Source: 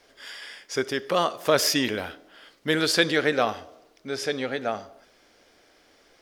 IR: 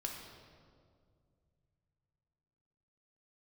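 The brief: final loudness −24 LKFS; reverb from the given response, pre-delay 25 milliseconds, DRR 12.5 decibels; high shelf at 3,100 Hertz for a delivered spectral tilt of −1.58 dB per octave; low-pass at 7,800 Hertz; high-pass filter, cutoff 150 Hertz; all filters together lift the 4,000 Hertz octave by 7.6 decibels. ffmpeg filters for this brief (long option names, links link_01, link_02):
-filter_complex "[0:a]highpass=150,lowpass=7800,highshelf=frequency=3100:gain=5,equalizer=frequency=4000:width_type=o:gain=6,asplit=2[link_01][link_02];[1:a]atrim=start_sample=2205,adelay=25[link_03];[link_02][link_03]afir=irnorm=-1:irlink=0,volume=-12.5dB[link_04];[link_01][link_04]amix=inputs=2:normalize=0,volume=-3dB"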